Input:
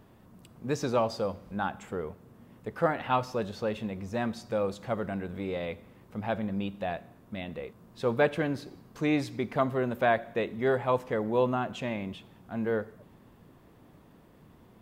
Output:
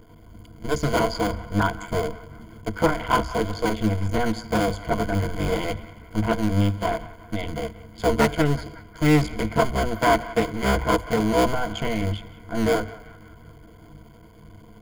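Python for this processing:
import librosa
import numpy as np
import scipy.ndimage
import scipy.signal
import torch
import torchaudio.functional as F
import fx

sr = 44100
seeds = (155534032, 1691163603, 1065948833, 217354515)

p1 = fx.cycle_switch(x, sr, every=2, mode='muted')
p2 = fx.low_shelf(p1, sr, hz=120.0, db=10.0)
p3 = fx.rider(p2, sr, range_db=3, speed_s=0.5)
p4 = p2 + (p3 * 10.0 ** (-1.0 / 20.0))
p5 = fx.ripple_eq(p4, sr, per_octave=1.8, db=16)
p6 = p5 + fx.echo_banded(p5, sr, ms=183, feedback_pct=59, hz=1500.0, wet_db=-15.5, dry=0)
y = fx.doppler_dist(p6, sr, depth_ms=0.2)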